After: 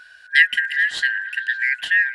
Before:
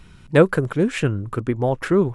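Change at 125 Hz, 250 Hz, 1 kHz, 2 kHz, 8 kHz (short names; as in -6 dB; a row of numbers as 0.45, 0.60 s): under -40 dB, under -40 dB, under -20 dB, +14.5 dB, -1.0 dB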